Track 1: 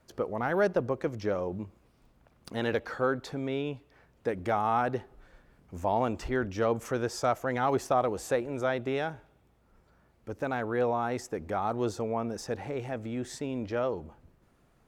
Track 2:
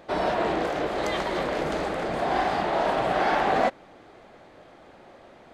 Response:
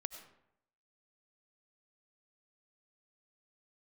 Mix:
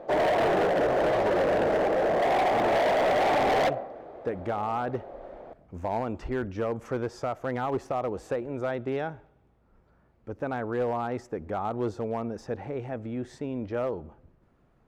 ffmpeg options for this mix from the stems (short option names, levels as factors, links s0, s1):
-filter_complex "[0:a]alimiter=limit=0.112:level=0:latency=1:release=111,volume=1.06,asplit=2[s0][s1];[s1]volume=0.126[s2];[1:a]equalizer=f=560:t=o:w=1.6:g=14,volume=0.447,asplit=2[s3][s4];[s4]volume=0.631[s5];[2:a]atrim=start_sample=2205[s6];[s2][s5]amix=inputs=2:normalize=0[s7];[s7][s6]afir=irnorm=-1:irlink=0[s8];[s0][s3][s8]amix=inputs=3:normalize=0,lowpass=f=1500:p=1,volume=11.9,asoftclip=hard,volume=0.0841"